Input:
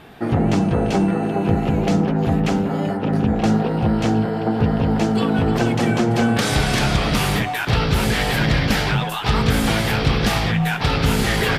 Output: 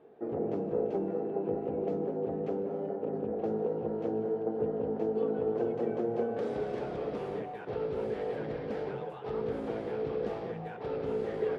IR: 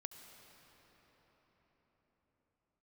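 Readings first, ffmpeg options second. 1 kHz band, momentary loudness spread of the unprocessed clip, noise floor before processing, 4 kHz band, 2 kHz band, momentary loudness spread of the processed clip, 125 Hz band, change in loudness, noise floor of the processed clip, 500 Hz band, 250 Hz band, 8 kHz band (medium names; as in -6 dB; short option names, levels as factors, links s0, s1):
-18.0 dB, 2 LU, -24 dBFS, under -30 dB, -27.0 dB, 5 LU, -24.5 dB, -15.0 dB, -42 dBFS, -6.5 dB, -18.0 dB, under -35 dB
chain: -filter_complex "[0:a]bandpass=f=450:t=q:w=3.7:csg=0[s0];[1:a]atrim=start_sample=2205,atrim=end_sample=6615,asetrate=23373,aresample=44100[s1];[s0][s1]afir=irnorm=-1:irlink=0,volume=0.75"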